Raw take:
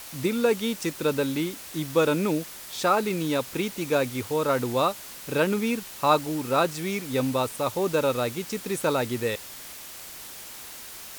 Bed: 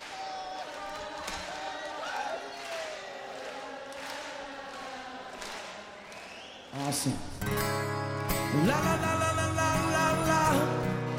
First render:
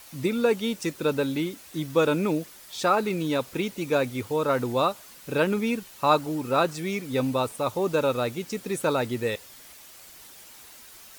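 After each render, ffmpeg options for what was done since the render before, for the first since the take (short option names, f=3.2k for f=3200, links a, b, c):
-af "afftdn=nr=8:nf=-42"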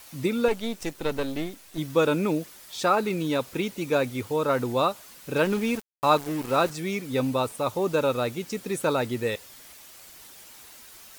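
-filter_complex "[0:a]asettb=1/sr,asplit=3[a][b][c];[a]atrim=end=0.484[d];[b]atrim=start=0.48:end=1.78,asetpts=PTS-STARTPTS,afade=t=in:d=0.004:c=qsin,afade=t=out:st=1.296:d=0.004:c=qsin,aeval=exprs='if(lt(val(0),0),0.251*val(0),val(0))':c=same[e];[c]atrim=start=1.776[f];[d][e]acrossfade=d=0.004:c1=hsin:c2=qsin[g];[g][f]acrossfade=d=0.004:c1=qsin:c2=hsin,asettb=1/sr,asplit=3[h][i][j];[h]atrim=end=5.364[k];[i]atrim=start=5.36:end=6.7,asetpts=PTS-STARTPTS,afade=t=in:d=0.004:c=qsin,afade=t=out:st=1.336:d=0.004:c=qsin,aeval=exprs='val(0)*gte(abs(val(0)),0.0211)':c=same[l];[j]atrim=start=6.696[m];[k][l]acrossfade=d=0.004:c1=hsin:c2=qsin[n];[n][m]acrossfade=d=0.004:c1=qsin:c2=hsin"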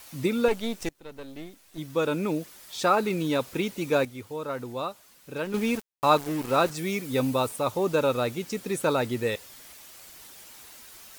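-filter_complex "[0:a]asettb=1/sr,asplit=3[a][b][c];[a]atrim=end=6.764[d];[b]atrim=start=6.76:end=7.59,asetpts=PTS-STARTPTS,afade=t=in:d=0.004:c=qsin,afade=t=out:st=0.826:d=0.004:c=qsin,highshelf=f=7.9k:g=5.5[e];[c]atrim=start=7.586[f];[d][e]acrossfade=d=0.004:c1=hsin:c2=qsin[g];[g][f]acrossfade=d=0.004:c1=qsin:c2=hsin,asplit=4[h][i][j][k];[h]atrim=end=0.89,asetpts=PTS-STARTPTS,afade=t=out:st=0.886:d=0.004:c=hsin:silence=0.0794328[l];[i]atrim=start=0.89:end=4.052,asetpts=PTS-STARTPTS,afade=t=in:d=1.95:silence=0.0794328[m];[j]atrim=start=4.048:end=5.542,asetpts=PTS-STARTPTS,volume=-8.5dB[n];[k]atrim=start=5.538[o];[l][m]concat=n=2:v=0:a=1[p];[p][n]acrossfade=d=0.004:c1=hsin:c2=hsin[q];[q][o]acrossfade=d=0.004:c1=hsin:c2=hsin"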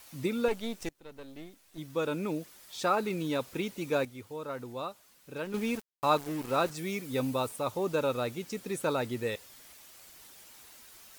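-af "volume=-5.5dB"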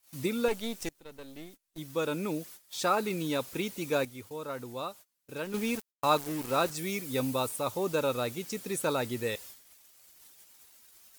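-af "agate=range=-25dB:threshold=-51dB:ratio=16:detection=peak,highshelf=f=4.7k:g=7.5"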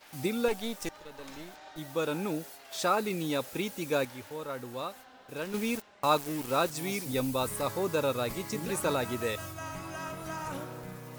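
-filter_complex "[1:a]volume=-12.5dB[a];[0:a][a]amix=inputs=2:normalize=0"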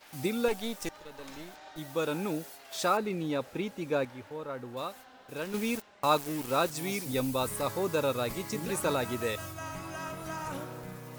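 -filter_complex "[0:a]asettb=1/sr,asplit=3[a][b][c];[a]atrim=end=2.974[d];[b]atrim=start=2.97:end=4.77,asetpts=PTS-STARTPTS,afade=t=in:d=0.004:c=qsin,afade=t=out:st=1.796:d=0.004:c=qsin,lowpass=f=2k:p=1[e];[c]atrim=start=4.766[f];[d][e]acrossfade=d=0.004:c1=hsin:c2=qsin[g];[g][f]acrossfade=d=0.004:c1=qsin:c2=hsin"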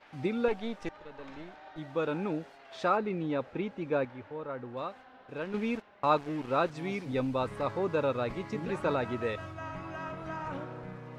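-af "lowpass=2.5k"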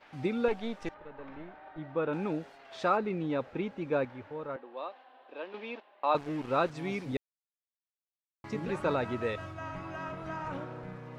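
-filter_complex "[0:a]asettb=1/sr,asplit=3[a][b][c];[a]atrim=end=0.944[d];[b]atrim=start=0.94:end=2.13,asetpts=PTS-STARTPTS,afade=t=in:d=0.004:c=qsin,afade=t=out:st=1.186:d=0.004:c=qsin,lowpass=2.2k[e];[c]atrim=start=2.126[f];[d][e]acrossfade=d=0.004:c1=hsin:c2=qsin[g];[g][f]acrossfade=d=0.004:c1=qsin:c2=hsin,asettb=1/sr,asplit=3[h][i][j];[h]atrim=end=4.564[k];[i]atrim=start=4.56:end=6.15,asetpts=PTS-STARTPTS,afade=t=in:d=0.004:c=qsin,afade=t=out:st=1.586:d=0.004:c=qsin,highpass=f=350:w=0.5412,highpass=f=350:w=1.3066,equalizer=f=430:t=q:w=4:g=-7,equalizer=f=1.4k:t=q:w=4:g=-8,equalizer=f=2.1k:t=q:w=4:g=-5,lowpass=f=4k:w=0.5412,lowpass=f=4k:w=1.3066[l];[j]atrim=start=6.146[m];[k][l]acrossfade=d=0.004:c1=hsin:c2=qsin[n];[n][m]acrossfade=d=0.004:c1=qsin:c2=hsin,asplit=3[o][p][q];[o]atrim=end=7.17,asetpts=PTS-STARTPTS,afade=t=out:st=7.166:d=0.004:c=hsin[r];[p]atrim=start=7.17:end=8.44,asetpts=PTS-STARTPTS,volume=0[s];[q]atrim=start=8.44,asetpts=PTS-STARTPTS,afade=t=in:d=0.004:c=hsin[t];[r][s][t]concat=n=3:v=0:a=1"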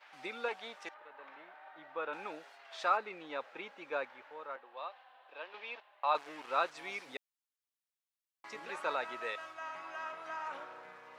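-af "highpass=840"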